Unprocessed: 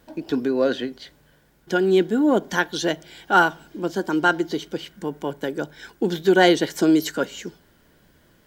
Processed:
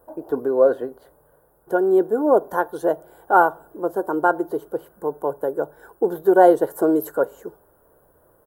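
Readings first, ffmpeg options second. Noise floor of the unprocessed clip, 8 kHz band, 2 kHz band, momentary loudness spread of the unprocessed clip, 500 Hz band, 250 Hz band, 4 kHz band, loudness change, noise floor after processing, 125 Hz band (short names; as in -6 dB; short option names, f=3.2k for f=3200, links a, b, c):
-58 dBFS, under -10 dB, -6.0 dB, 14 LU, +4.0 dB, -2.5 dB, under -20 dB, +1.5 dB, -59 dBFS, -9.0 dB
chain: -af "firequalizer=gain_entry='entry(130,0);entry(190,-8);entry(460,11);entry(760,9);entry(1200,7);entry(2200,-21);entry(5800,-19);entry(10000,8)':delay=0.05:min_phase=1,volume=-4dB"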